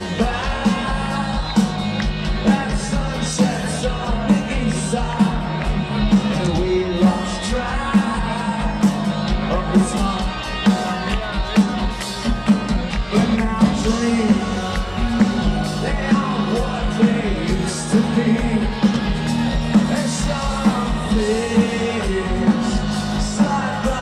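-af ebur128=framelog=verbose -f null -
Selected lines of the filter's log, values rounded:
Integrated loudness:
  I:         -19.4 LUFS
  Threshold: -29.4 LUFS
Loudness range:
  LRA:         1.5 LU
  Threshold: -39.4 LUFS
  LRA low:   -20.2 LUFS
  LRA high:  -18.7 LUFS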